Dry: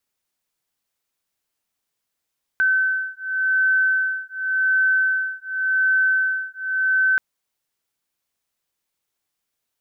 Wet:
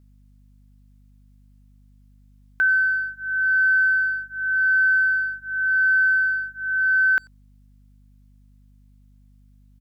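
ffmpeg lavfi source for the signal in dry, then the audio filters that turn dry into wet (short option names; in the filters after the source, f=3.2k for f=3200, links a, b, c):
-f lavfi -i "aevalsrc='0.0944*(sin(2*PI*1530*t)+sin(2*PI*1530.89*t))':d=4.58:s=44100"
-filter_complex "[0:a]aeval=exprs='val(0)+0.00251*(sin(2*PI*50*n/s)+sin(2*PI*2*50*n/s)/2+sin(2*PI*3*50*n/s)/3+sin(2*PI*4*50*n/s)/4+sin(2*PI*5*50*n/s)/5)':c=same,asplit=2[a][b];[b]adelay=90,highpass=300,lowpass=3.4k,asoftclip=type=hard:threshold=-23.5dB,volume=-25dB[c];[a][c]amix=inputs=2:normalize=0"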